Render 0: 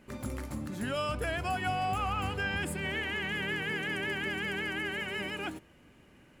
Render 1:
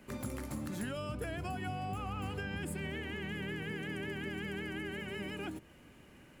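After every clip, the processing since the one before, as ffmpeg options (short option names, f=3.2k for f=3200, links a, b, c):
-filter_complex "[0:a]highshelf=f=9.1k:g=5.5,acrossover=split=84|420[a][b][c];[a]acompressor=threshold=-53dB:ratio=4[d];[b]acompressor=threshold=-39dB:ratio=4[e];[c]acompressor=threshold=-45dB:ratio=4[f];[d][e][f]amix=inputs=3:normalize=0,volume=1dB"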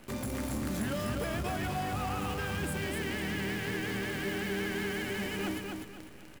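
-af "acrusher=bits=9:dc=4:mix=0:aa=0.000001,aeval=exprs='0.0422*(cos(1*acos(clip(val(0)/0.0422,-1,1)))-cos(1*PI/2))+0.0106*(cos(5*acos(clip(val(0)/0.0422,-1,1)))-cos(5*PI/2))':c=same,aecho=1:1:249|498|747|996:0.631|0.215|0.0729|0.0248"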